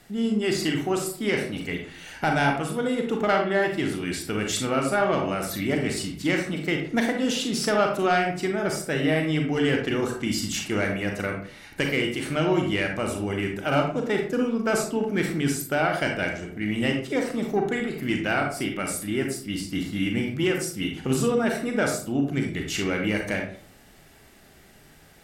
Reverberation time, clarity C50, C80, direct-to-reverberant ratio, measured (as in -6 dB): 0.55 s, 5.0 dB, 9.5 dB, 2.0 dB